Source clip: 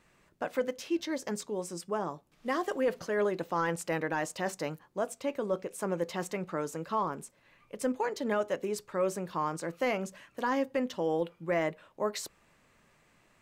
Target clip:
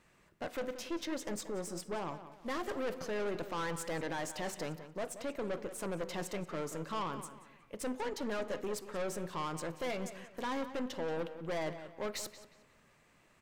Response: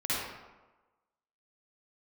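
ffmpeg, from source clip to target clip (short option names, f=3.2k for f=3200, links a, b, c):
-filter_complex "[0:a]aeval=exprs='(tanh(50.1*val(0)+0.45)-tanh(0.45))/50.1':c=same,asplit=2[a][b];[b]adelay=181,lowpass=f=4k:p=1,volume=-12dB,asplit=2[c][d];[d]adelay=181,lowpass=f=4k:p=1,volume=0.36,asplit=2[e][f];[f]adelay=181,lowpass=f=4k:p=1,volume=0.36,asplit=2[g][h];[h]adelay=181,lowpass=f=4k:p=1,volume=0.36[i];[a][c][e][g][i]amix=inputs=5:normalize=0,asplit=2[j][k];[1:a]atrim=start_sample=2205,asetrate=52920,aresample=44100[l];[k][l]afir=irnorm=-1:irlink=0,volume=-24dB[m];[j][m]amix=inputs=2:normalize=0"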